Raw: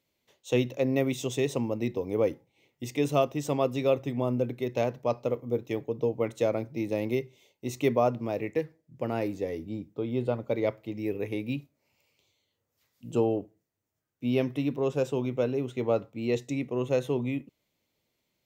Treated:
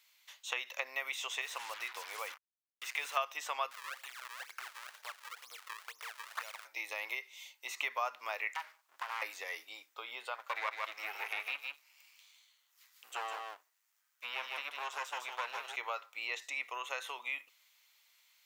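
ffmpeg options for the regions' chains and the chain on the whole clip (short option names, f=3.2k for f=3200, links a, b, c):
-filter_complex "[0:a]asettb=1/sr,asplit=3[a][b][c];[a]atrim=end=1.414[d];[b]atrim=start=1.41:end=3.17,asetpts=PTS-STARTPTS,afade=t=in:d=0.004:c=qsin,afade=t=out:st=1.756:d=0.004:c=qsin,lowshelf=f=330:g=-3.5,acompressor=threshold=-40dB:ratio=1.5:attack=3.2:release=140:knee=1:detection=peak,acrusher=bits=7:mix=0:aa=0.5[e];[c]atrim=start=3.166[f];[d][e]acrossfade=d=0.004:c1=hsin:c2=qsin[g];[g][f]acrossfade=d=0.004:c1=qsin:c2=hsin,asettb=1/sr,asplit=3[h][i][j];[h]atrim=end=3.714[k];[i]atrim=start=3.71:end=6.65,asetpts=PTS-STARTPTS,afade=t=in:d=0.004:c=qsin,afade=t=out:st=2.936:d=0.004:c=qsin,acompressor=threshold=-41dB:ratio=6:attack=3.2:release=140:knee=1:detection=peak,tiltshelf=f=1.4k:g=-5,acrusher=samples=35:mix=1:aa=0.000001:lfo=1:lforange=56:lforate=2.1[l];[j]atrim=start=6.646[m];[k][l]acrossfade=d=0.004:c1=hsin:c2=qsin[n];[n][m]acrossfade=d=0.004:c1=qsin:c2=hsin,asettb=1/sr,asplit=3[o][p][q];[o]atrim=end=8.544[r];[p]atrim=start=8.54:end=9.22,asetpts=PTS-STARTPTS,afade=t=in:d=0.004:c=qsin,afade=t=out:st=0.676:d=0.004:c=qsin,acompressor=threshold=-37dB:ratio=4:attack=3.2:release=140:knee=1:detection=peak,aeval=exprs='abs(val(0))':c=same[s];[q]atrim=start=9.216[t];[r][s]acrossfade=d=0.004:c1=hsin:c2=qsin[u];[u][t]acrossfade=d=0.004:c1=qsin:c2=hsin,asettb=1/sr,asplit=3[v][w][x];[v]atrim=end=10.354[y];[w]atrim=start=10.35:end=15.76,asetpts=PTS-STARTPTS,afade=t=in:d=0.004:c=qsin,afade=t=out:st=5.406:d=0.004:c=qsin,aeval=exprs='if(lt(val(0),0),0.251*val(0),val(0))':c=same,aecho=1:1:154:0.473,atrim=end_sample=238581[z];[x]atrim=start=15.756[aa];[y][z]acrossfade=d=0.004:c1=hsin:c2=qsin[ab];[ab][aa]acrossfade=d=0.004:c1=qsin:c2=hsin,acompressor=threshold=-30dB:ratio=6,highpass=f=1.1k:w=0.5412,highpass=f=1.1k:w=1.3066,acrossover=split=2600[ac][ad];[ad]acompressor=threshold=-58dB:ratio=4:attack=1:release=60[ae];[ac][ae]amix=inputs=2:normalize=0,volume=12.5dB"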